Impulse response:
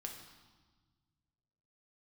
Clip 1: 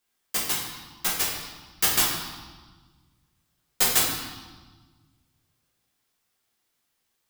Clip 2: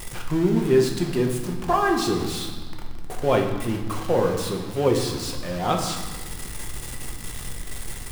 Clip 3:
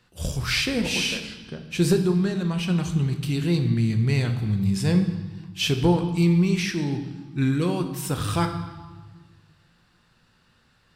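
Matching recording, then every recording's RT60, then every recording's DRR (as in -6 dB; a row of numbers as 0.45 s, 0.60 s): 2; 1.3 s, 1.4 s, 1.4 s; -6.0 dB, 1.5 dB, 5.5 dB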